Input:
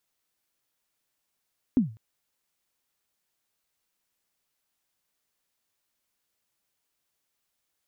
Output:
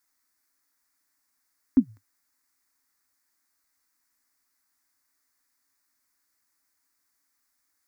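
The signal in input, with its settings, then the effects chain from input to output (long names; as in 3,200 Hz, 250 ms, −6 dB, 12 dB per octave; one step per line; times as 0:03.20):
synth kick length 0.20 s, from 280 Hz, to 110 Hz, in 129 ms, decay 0.34 s, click off, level −14 dB
drawn EQ curve 100 Hz 0 dB, 150 Hz −21 dB, 270 Hz +8 dB, 400 Hz −6 dB, 620 Hz −4 dB, 1,100 Hz +5 dB, 2,000 Hz +7 dB, 3,000 Hz −11 dB, 4,700 Hz +5 dB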